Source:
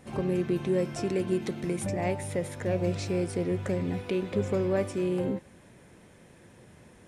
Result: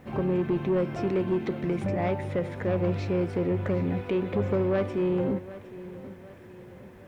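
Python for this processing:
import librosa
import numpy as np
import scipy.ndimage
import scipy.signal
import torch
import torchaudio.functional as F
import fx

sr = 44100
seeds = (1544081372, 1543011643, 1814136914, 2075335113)

p1 = scipy.signal.sosfilt(scipy.signal.butter(2, 2600.0, 'lowpass', fs=sr, output='sos'), x)
p2 = fx.quant_dither(p1, sr, seeds[0], bits=12, dither='none')
p3 = fx.fold_sine(p2, sr, drive_db=7, ceiling_db=-15.5)
p4 = p2 + (p3 * librosa.db_to_amplitude(-8.0))
p5 = fx.echo_feedback(p4, sr, ms=760, feedback_pct=46, wet_db=-16.5)
y = p5 * librosa.db_to_amplitude(-4.0)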